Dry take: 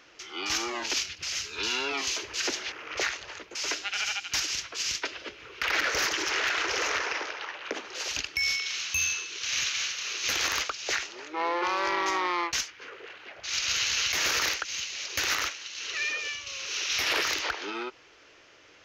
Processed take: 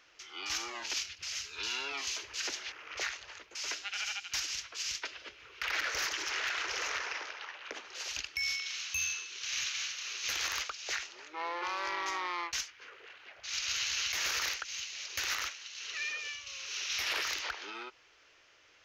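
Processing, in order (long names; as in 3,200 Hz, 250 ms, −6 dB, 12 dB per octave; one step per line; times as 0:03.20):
parametric band 250 Hz −8.5 dB 2.6 octaves
level −6 dB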